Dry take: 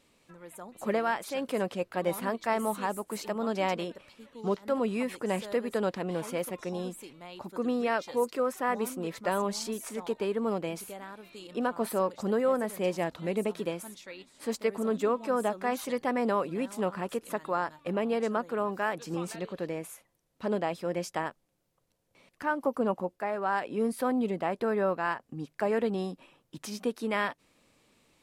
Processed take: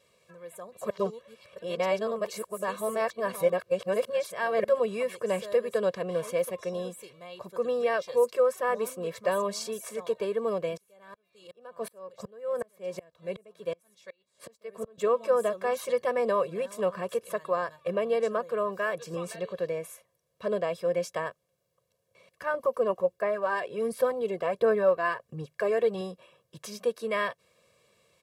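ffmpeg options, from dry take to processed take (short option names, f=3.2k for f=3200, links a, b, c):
-filter_complex "[0:a]asettb=1/sr,asplit=3[a][b][c];[a]atrim=end=10.774[d];[b]atrim=start=10.77:end=14.98,asetpts=PTS-STARTPTS,afade=t=in:d=0.004:c=qsin,afade=t=out:st=4.206:d=0.004:c=qsin,aeval=exprs='val(0)*pow(10,-33*if(lt(mod(-2.7*n/s,1),2*abs(-2.7)/1000),1-mod(-2.7*n/s,1)/(2*abs(-2.7)/1000),(mod(-2.7*n/s,1)-2*abs(-2.7)/1000)/(1-2*abs(-2.7)/1000))/20)':c=same[e];[c]atrim=start=14.976[f];[d][e]acrossfade=d=0.004:c1=hsin:c2=qsin[g];[g][f]acrossfade=d=0.004:c1=qsin:c2=hsin,asettb=1/sr,asplit=3[h][i][j];[h]atrim=end=22.544[k];[i]atrim=start=22.54:end=26.01,asetpts=PTS-STARTPTS,afade=t=in:d=0.004:c=qsin,afade=t=out:st=3.466:d=0.004:c=qsin,aphaser=in_gain=1:out_gain=1:delay=2.9:decay=0.41:speed=1.4:type=sinusoidal[l];[j]atrim=start=26.006[m];[k][l]acrossfade=d=0.004:c1=hsin:c2=qsin[n];[n][m]acrossfade=d=0.004:c1=qsin:c2=hsin,asplit=3[o][p][q];[o]atrim=end=0.902[r];[p]atrim=start=0.898:end=4.642,asetpts=PTS-STARTPTS,areverse[s];[q]atrim=start=4.638[t];[r][s]acrossfade=d=0.004:c1=hsin:c2=hsin[u];[u][t]acrossfade=d=0.004:c1=hsin:c2=hsin,highpass=92,equalizer=f=510:t=o:w=0.37:g=4,aecho=1:1:1.8:0.98,volume=-3dB"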